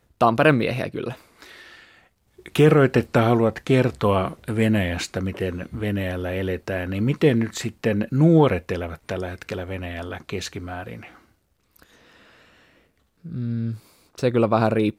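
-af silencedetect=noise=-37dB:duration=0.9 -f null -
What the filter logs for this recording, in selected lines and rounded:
silence_start: 11.82
silence_end: 13.25 | silence_duration: 1.43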